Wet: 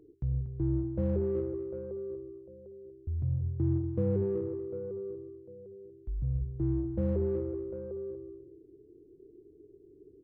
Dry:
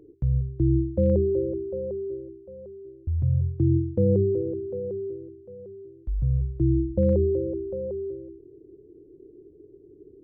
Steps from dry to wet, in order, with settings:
in parallel at −9 dB: soft clipping −27.5 dBFS, distortion −6 dB
on the sum: notch filter 540 Hz, Q 12
slap from a distant wall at 41 metres, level −10 dB
level −9 dB

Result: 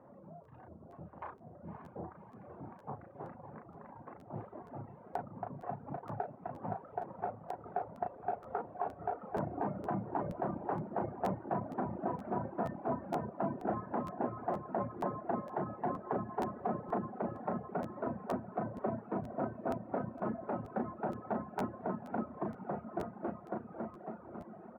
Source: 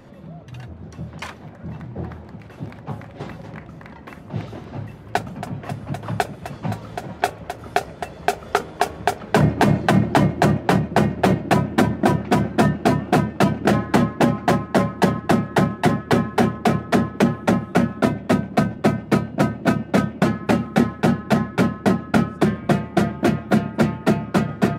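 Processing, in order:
fade-out on the ending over 3.70 s
brickwall limiter −14 dBFS, peak gain reduction 10.5 dB
low-pass filter 1,000 Hz 24 dB per octave
spectral tilt +4.5 dB per octave
double-tracking delay 36 ms −5.5 dB
feedback delay with all-pass diffusion 570 ms, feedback 67%, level −7.5 dB
reverb reduction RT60 1 s
regular buffer underruns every 0.47 s, samples 512, repeat, from 0:00.43
level −5.5 dB

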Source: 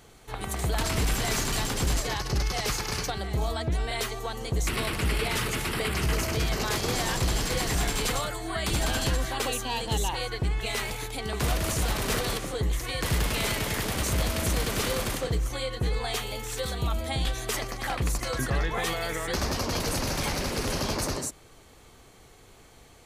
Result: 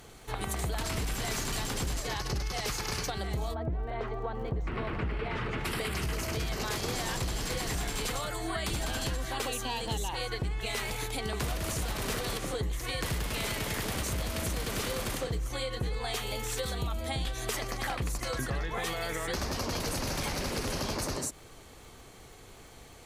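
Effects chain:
0:03.53–0:05.64: low-pass filter 1,000 Hz → 2,200 Hz 12 dB per octave
surface crackle 34 per second −48 dBFS
downward compressor, threshold −32 dBFS, peak gain reduction 10 dB
level +2 dB

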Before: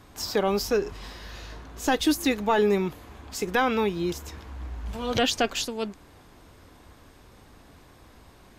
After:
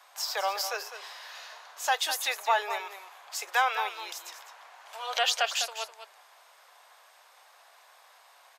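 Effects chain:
Butterworth high-pass 630 Hz 36 dB per octave
on a send: single-tap delay 203 ms −10.5 dB

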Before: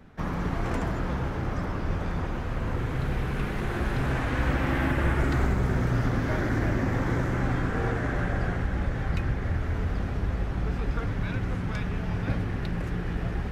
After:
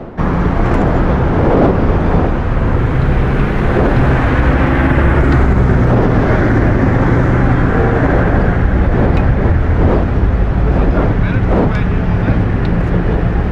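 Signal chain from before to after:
wind on the microphone 480 Hz −32 dBFS
low-pass filter 1,900 Hz 6 dB per octave
boost into a limiter +17 dB
level −1 dB

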